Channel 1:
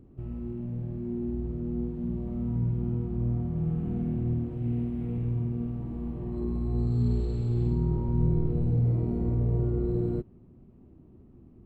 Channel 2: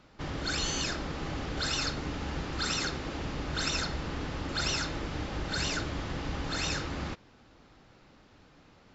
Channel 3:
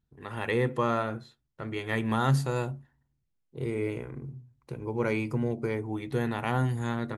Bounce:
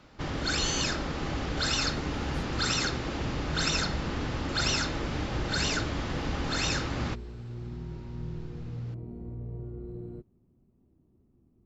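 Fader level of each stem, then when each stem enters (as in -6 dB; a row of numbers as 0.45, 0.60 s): -12.5, +3.0, -18.5 dB; 0.00, 0.00, 0.00 s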